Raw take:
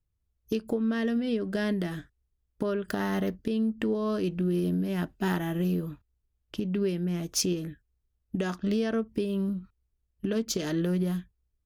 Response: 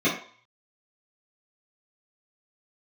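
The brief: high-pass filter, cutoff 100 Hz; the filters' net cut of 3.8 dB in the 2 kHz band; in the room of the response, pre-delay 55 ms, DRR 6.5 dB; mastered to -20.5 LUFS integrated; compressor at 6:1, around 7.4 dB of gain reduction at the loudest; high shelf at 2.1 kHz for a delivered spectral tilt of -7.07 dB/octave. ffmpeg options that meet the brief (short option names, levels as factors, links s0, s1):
-filter_complex "[0:a]highpass=100,equalizer=f=2000:t=o:g=-3,highshelf=f=2100:g=-3.5,acompressor=threshold=0.0251:ratio=6,asplit=2[s0][s1];[1:a]atrim=start_sample=2205,adelay=55[s2];[s1][s2]afir=irnorm=-1:irlink=0,volume=0.0794[s3];[s0][s3]amix=inputs=2:normalize=0,volume=5.31"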